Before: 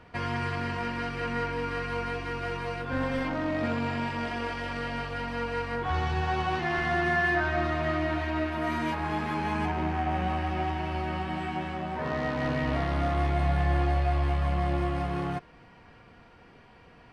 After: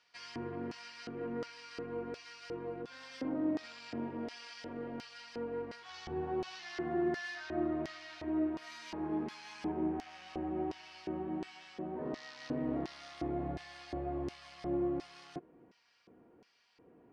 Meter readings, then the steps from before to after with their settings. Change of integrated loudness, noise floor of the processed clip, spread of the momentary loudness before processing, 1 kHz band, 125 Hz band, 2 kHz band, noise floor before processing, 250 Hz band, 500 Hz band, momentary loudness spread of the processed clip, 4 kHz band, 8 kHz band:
−10.0 dB, −64 dBFS, 7 LU, −15.5 dB, −18.5 dB, −17.0 dB, −54 dBFS, −5.0 dB, −7.5 dB, 11 LU, −9.0 dB, can't be measured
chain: auto-filter band-pass square 1.4 Hz 340–5,300 Hz
level +1 dB

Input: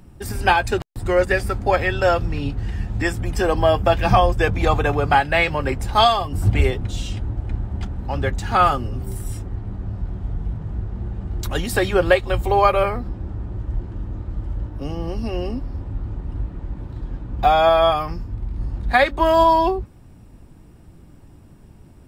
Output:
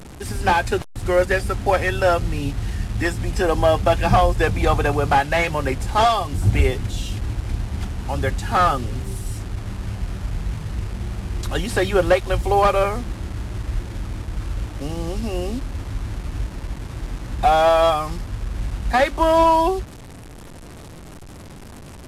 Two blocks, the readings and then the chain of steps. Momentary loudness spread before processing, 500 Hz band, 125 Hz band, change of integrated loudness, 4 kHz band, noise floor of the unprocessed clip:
14 LU, 0.0 dB, 0.0 dB, −0.5 dB, −2.0 dB, −46 dBFS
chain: linear delta modulator 64 kbit/s, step −32.5 dBFS

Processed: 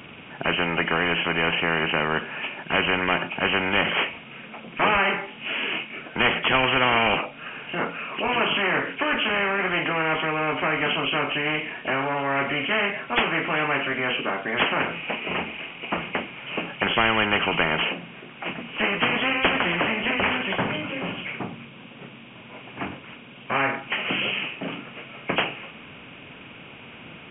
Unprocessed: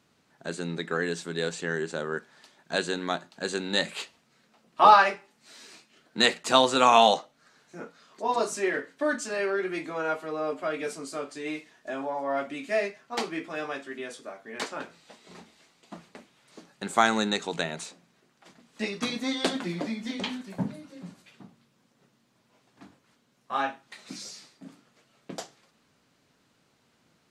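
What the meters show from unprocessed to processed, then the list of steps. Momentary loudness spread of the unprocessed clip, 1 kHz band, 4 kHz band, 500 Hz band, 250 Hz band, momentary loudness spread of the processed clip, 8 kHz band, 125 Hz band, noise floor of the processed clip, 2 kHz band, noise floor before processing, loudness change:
22 LU, +0.5 dB, +6.0 dB, +2.0 dB, +4.0 dB, 19 LU, below −40 dB, +8.0 dB, −44 dBFS, +10.0 dB, −68 dBFS, +3.5 dB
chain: hearing-aid frequency compression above 2,100 Hz 4 to 1
every bin compressed towards the loudest bin 4 to 1

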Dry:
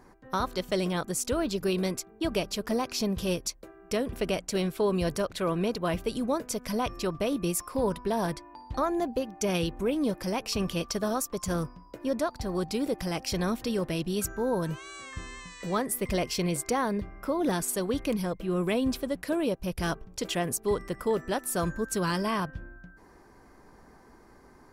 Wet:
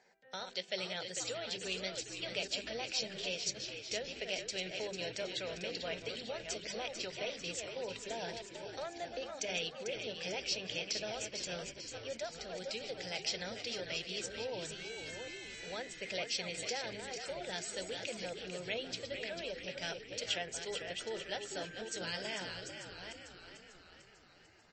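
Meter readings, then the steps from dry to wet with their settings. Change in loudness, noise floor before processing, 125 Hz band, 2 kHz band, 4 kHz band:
−9.5 dB, −55 dBFS, −18.0 dB, −3.5 dB, −0.5 dB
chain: delay that plays each chunk backwards 413 ms, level −8 dB
low-pass filter 2,600 Hz 12 dB per octave
mains-hum notches 50/100/150/200/250/300/350/400 Hz
brickwall limiter −20.5 dBFS, peak gain reduction 5 dB
first difference
phaser with its sweep stopped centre 300 Hz, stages 6
on a send: echo with shifted repeats 446 ms, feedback 56%, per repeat −62 Hz, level −8 dB
on the sum: level +13 dB
MP3 32 kbit/s 24,000 Hz

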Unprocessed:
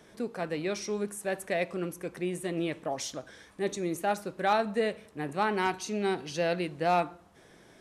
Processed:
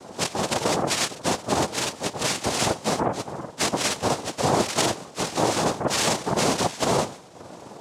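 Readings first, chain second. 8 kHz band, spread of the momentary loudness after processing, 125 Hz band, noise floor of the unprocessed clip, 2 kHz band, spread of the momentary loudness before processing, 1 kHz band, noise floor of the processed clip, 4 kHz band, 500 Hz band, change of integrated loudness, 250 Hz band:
+16.0 dB, 6 LU, +9.0 dB, −57 dBFS, +5.5 dB, 9 LU, +6.0 dB, −45 dBFS, +15.0 dB, +4.5 dB, +7.0 dB, +5.5 dB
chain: frequency axis turned over on the octave scale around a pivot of 680 Hz
parametric band 1,600 Hz −14 dB 0.43 octaves
in parallel at +2 dB: downward compressor, threshold −39 dBFS, peak gain reduction 16 dB
on the sum: brickwall limiter −22 dBFS, peak gain reduction 8.5 dB
cochlear-implant simulation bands 2
level +8.5 dB

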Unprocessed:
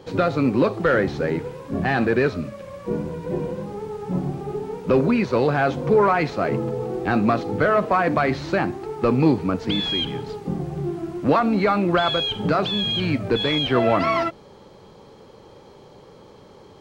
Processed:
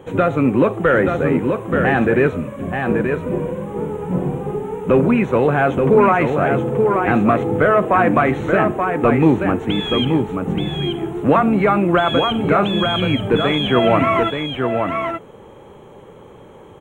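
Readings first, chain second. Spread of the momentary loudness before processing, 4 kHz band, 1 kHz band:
10 LU, +0.5 dB, +5.0 dB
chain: Butterworth band-reject 4,800 Hz, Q 1.2
on a send: single-tap delay 879 ms −5 dB
on the sum: level +4 dB

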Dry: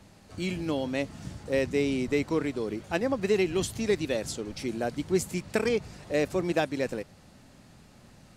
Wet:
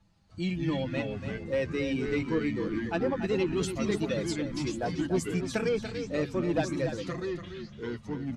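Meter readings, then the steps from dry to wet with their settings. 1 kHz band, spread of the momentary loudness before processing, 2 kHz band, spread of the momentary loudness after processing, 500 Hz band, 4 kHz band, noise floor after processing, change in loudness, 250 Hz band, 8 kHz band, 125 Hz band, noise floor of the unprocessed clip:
−1.0 dB, 8 LU, −2.0 dB, 7 LU, −2.5 dB, −2.0 dB, −50 dBFS, −1.5 dB, +0.5 dB, −4.0 dB, +2.5 dB, −55 dBFS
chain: spectral dynamics exaggerated over time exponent 1.5
comb filter 6 ms, depth 46%
hum removal 140.3 Hz, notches 2
in parallel at −0.5 dB: brickwall limiter −25 dBFS, peak gain reduction 12 dB
on the sum: soft clipping −17 dBFS, distortion −19 dB
delay with pitch and tempo change per echo 92 ms, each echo −4 semitones, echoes 3, each echo −6 dB
high-frequency loss of the air 52 metres
on a send: repeating echo 287 ms, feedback 15%, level −9 dB
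on the sum: level −3 dB

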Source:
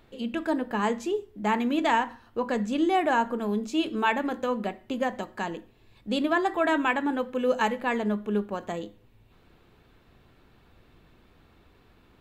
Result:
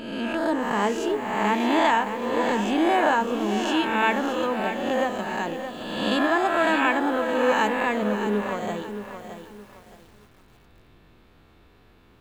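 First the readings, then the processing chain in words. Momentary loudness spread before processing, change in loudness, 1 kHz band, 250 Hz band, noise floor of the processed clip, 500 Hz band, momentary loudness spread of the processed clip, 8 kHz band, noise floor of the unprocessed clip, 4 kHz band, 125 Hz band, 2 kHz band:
10 LU, +4.0 dB, +4.5 dB, +2.5 dB, −55 dBFS, +4.0 dB, 10 LU, +6.0 dB, −60 dBFS, +6.0 dB, +2.5 dB, +5.5 dB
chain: peak hold with a rise ahead of every peak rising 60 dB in 1.24 s
feedback echo at a low word length 619 ms, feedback 35%, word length 8 bits, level −9 dB

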